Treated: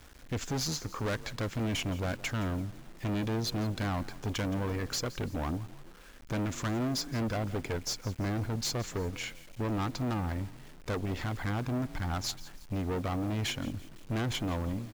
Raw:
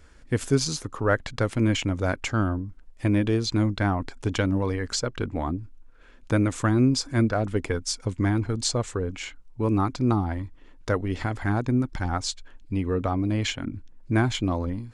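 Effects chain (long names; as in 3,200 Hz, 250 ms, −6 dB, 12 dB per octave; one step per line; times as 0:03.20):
downsampling to 16,000 Hz
tube saturation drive 29 dB, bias 0.45
echo with shifted repeats 169 ms, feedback 40%, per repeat +33 Hz, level −18 dB
bit reduction 9 bits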